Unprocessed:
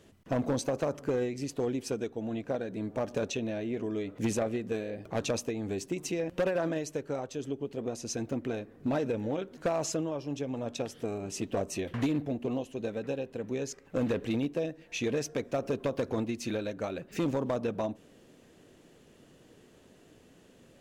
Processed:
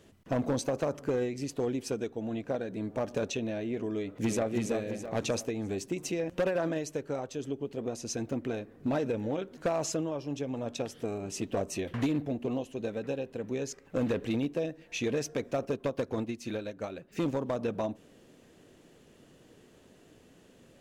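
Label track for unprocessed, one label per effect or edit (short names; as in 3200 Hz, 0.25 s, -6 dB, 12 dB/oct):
3.940000	4.500000	echo throw 0.33 s, feedback 45%, level -4.5 dB
15.650000	17.590000	upward expander, over -42 dBFS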